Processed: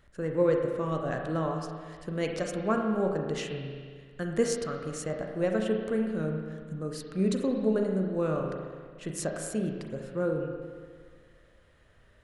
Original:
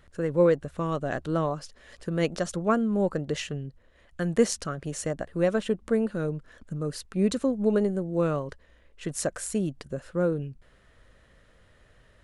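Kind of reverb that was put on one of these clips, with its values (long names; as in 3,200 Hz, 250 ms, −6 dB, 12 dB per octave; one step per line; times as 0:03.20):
spring reverb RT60 1.8 s, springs 32/37 ms, chirp 30 ms, DRR 2 dB
level −4.5 dB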